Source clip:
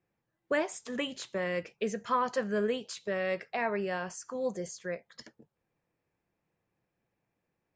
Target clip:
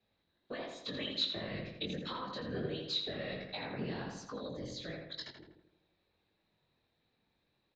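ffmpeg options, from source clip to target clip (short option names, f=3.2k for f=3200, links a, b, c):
-filter_complex "[0:a]acrossover=split=190[a][b];[b]acompressor=threshold=-43dB:ratio=6[c];[a][c]amix=inputs=2:normalize=0,afftfilt=real='hypot(re,im)*cos(2*PI*random(0))':imag='hypot(re,im)*sin(2*PI*random(1))':win_size=512:overlap=0.75,flanger=delay=18:depth=5.3:speed=1.4,lowpass=f=3.9k:t=q:w=15,asplit=2[d][e];[e]adelay=82,lowpass=f=2.7k:p=1,volume=-3.5dB,asplit=2[f][g];[g]adelay=82,lowpass=f=2.7k:p=1,volume=0.52,asplit=2[h][i];[i]adelay=82,lowpass=f=2.7k:p=1,volume=0.52,asplit=2[j][k];[k]adelay=82,lowpass=f=2.7k:p=1,volume=0.52,asplit=2[l][m];[m]adelay=82,lowpass=f=2.7k:p=1,volume=0.52,asplit=2[n][o];[o]adelay=82,lowpass=f=2.7k:p=1,volume=0.52,asplit=2[p][q];[q]adelay=82,lowpass=f=2.7k:p=1,volume=0.52[r];[f][h][j][l][n][p][r]amix=inputs=7:normalize=0[s];[d][s]amix=inputs=2:normalize=0,volume=9dB"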